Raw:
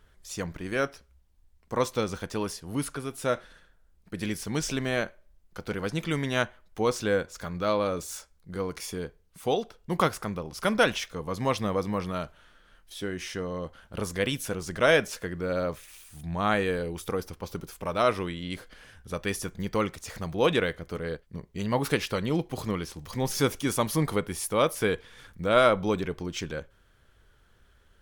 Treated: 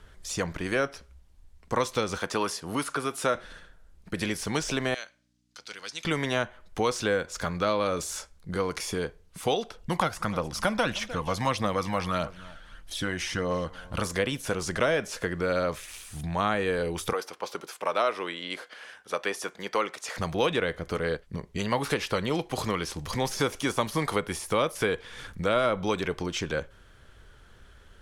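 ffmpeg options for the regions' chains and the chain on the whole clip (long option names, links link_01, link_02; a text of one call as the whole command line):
ffmpeg -i in.wav -filter_complex "[0:a]asettb=1/sr,asplit=3[link_01][link_02][link_03];[link_01]atrim=end=2.184[link_04];[link_02]atrim=start=2.18:end=3.35,asetpts=PTS-STARTPTS,afade=type=in:duration=0.004:curve=qsin,afade=type=out:start_time=1.166:duration=0.004:curve=qsin,highpass=frequency=250:poles=1,equalizer=frequency=1200:width_type=o:width=0.61:gain=4[link_05];[link_03]atrim=start=3.346[link_06];[link_04][link_05]acrossfade=duration=0.004:curve1=hsin:curve2=qsin[link_07];[link_07][link_06]acrossfade=duration=0.004:curve1=qsin:curve2=hsin,asettb=1/sr,asplit=3[link_08][link_09][link_10];[link_08]atrim=end=4.944[link_11];[link_09]atrim=start=4.94:end=6.05,asetpts=PTS-STARTPTS,afade=type=in:duration=0.004:curve=qsin,afade=type=out:start_time=1.106:duration=0.004:curve=qsin,aeval=exprs='val(0)+0.00708*(sin(2*PI*60*n/s)+sin(2*PI*2*60*n/s)/2+sin(2*PI*3*60*n/s)/3+sin(2*PI*4*60*n/s)/4+sin(2*PI*5*60*n/s)/5)':channel_layout=same,bandpass=frequency=5300:width_type=q:width=1.3[link_12];[link_10]atrim=start=6.046[link_13];[link_11][link_12]acrossfade=duration=0.004:curve1=hsin:curve2=qsin[link_14];[link_14][link_13]acrossfade=duration=0.004:curve1=qsin:curve2=hsin,asettb=1/sr,asplit=3[link_15][link_16][link_17];[link_15]atrim=end=9.774[link_18];[link_16]atrim=start=9.77:end=14.07,asetpts=PTS-STARTPTS,afade=type=in:duration=0.004:curve=qsin,afade=type=out:start_time=4.296:duration=0.004:curve=qsin,bandreject=frequency=410:width=6.9,aecho=1:1:303:0.0631,atrim=end_sample=189630,aphaser=in_gain=1:out_gain=1:delay=1.5:decay=0.39:speed=1.6:type=triangular[link_19];[link_17]atrim=start=14.066[link_20];[link_18][link_19]acrossfade=duration=0.004:curve1=hsin:curve2=qsin[link_21];[link_21][link_20]acrossfade=duration=0.004:curve1=qsin:curve2=hsin,asettb=1/sr,asplit=3[link_22][link_23][link_24];[link_22]atrim=end=17.134[link_25];[link_23]atrim=start=17.13:end=20.18,asetpts=PTS-STARTPTS,afade=type=in:duration=0.004:curve=qsin,afade=type=out:start_time=3.046:duration=0.004:curve=qsin,highpass=560,highshelf=frequency=5000:gain=-6[link_26];[link_24]atrim=start=20.176[link_27];[link_25][link_26]acrossfade=duration=0.004:curve1=hsin:curve2=qsin[link_28];[link_28][link_27]acrossfade=duration=0.004:curve1=qsin:curve2=hsin,deesser=0.7,lowpass=11000,acrossover=split=470|1200[link_29][link_30][link_31];[link_29]acompressor=threshold=-40dB:ratio=4[link_32];[link_30]acompressor=threshold=-37dB:ratio=4[link_33];[link_31]acompressor=threshold=-39dB:ratio=4[link_34];[link_32][link_33][link_34]amix=inputs=3:normalize=0,volume=8dB" out.wav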